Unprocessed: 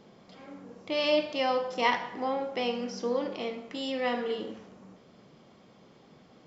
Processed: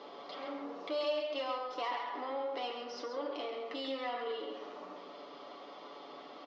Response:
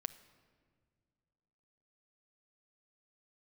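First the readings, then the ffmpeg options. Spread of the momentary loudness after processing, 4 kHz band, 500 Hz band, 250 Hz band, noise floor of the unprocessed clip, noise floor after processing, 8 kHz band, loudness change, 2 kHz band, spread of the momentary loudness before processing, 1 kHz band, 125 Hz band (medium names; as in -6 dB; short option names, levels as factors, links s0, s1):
14 LU, -7.5 dB, -7.0 dB, -10.0 dB, -58 dBFS, -51 dBFS, no reading, -9.5 dB, -10.5 dB, 19 LU, -6.0 dB, under -20 dB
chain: -filter_complex "[0:a]acompressor=threshold=0.00501:ratio=3,aresample=16000,asoftclip=type=tanh:threshold=0.0112,aresample=44100,highpass=f=350:w=0.5412,highpass=f=350:w=1.3066,equalizer=f=440:t=q:w=4:g=-5,equalizer=f=1200:t=q:w=4:g=5,equalizer=f=1600:t=q:w=4:g=-7,equalizer=f=2400:t=q:w=4:g=-5,lowpass=f=4500:w=0.5412,lowpass=f=4500:w=1.3066,aeval=exprs='0.0178*(cos(1*acos(clip(val(0)/0.0178,-1,1)))-cos(1*PI/2))+0.000224*(cos(5*acos(clip(val(0)/0.0178,-1,1)))-cos(5*PI/2))':c=same,asplit=2[s0][s1];[s1]adelay=134.1,volume=0.501,highshelf=f=4000:g=-3.02[s2];[s0][s2]amix=inputs=2:normalize=0,asplit=2[s3][s4];[1:a]atrim=start_sample=2205,adelay=7[s5];[s4][s5]afir=irnorm=-1:irlink=0,volume=0.75[s6];[s3][s6]amix=inputs=2:normalize=0,volume=2.82"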